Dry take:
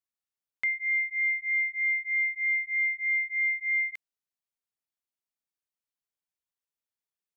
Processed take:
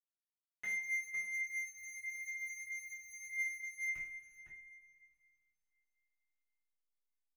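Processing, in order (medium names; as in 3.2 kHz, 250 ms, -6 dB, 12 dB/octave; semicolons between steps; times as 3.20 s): spectral sustain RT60 0.38 s; treble shelf 2.2 kHz -7.5 dB; comb 4.8 ms, depth 72%; compression 10:1, threshold -27 dBFS, peak gain reduction 4.5 dB; flange 0.3 Hz, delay 8.9 ms, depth 3.7 ms, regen +57%; hysteresis with a dead band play -38 dBFS; echo from a far wall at 87 m, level -7 dB; two-slope reverb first 0.4 s, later 2.8 s, from -20 dB, DRR -7.5 dB; Shepard-style phaser rising 0.78 Hz; trim -6 dB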